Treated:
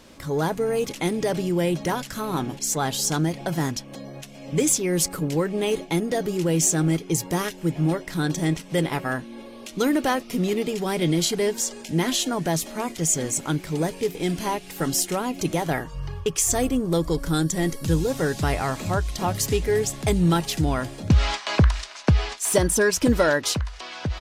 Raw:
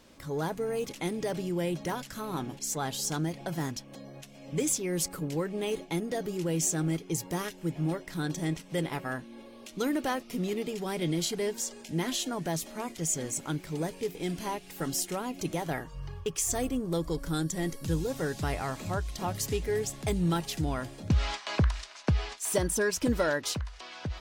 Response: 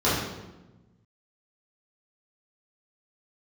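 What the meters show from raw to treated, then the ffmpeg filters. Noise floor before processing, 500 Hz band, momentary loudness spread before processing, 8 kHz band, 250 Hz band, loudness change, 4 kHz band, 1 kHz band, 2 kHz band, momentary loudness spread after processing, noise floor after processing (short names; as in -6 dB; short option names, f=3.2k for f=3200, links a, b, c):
-50 dBFS, +8.0 dB, 8 LU, +8.0 dB, +8.0 dB, +8.0 dB, +8.0 dB, +8.0 dB, +8.0 dB, 8 LU, -42 dBFS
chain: -af "aresample=32000,aresample=44100,volume=8dB"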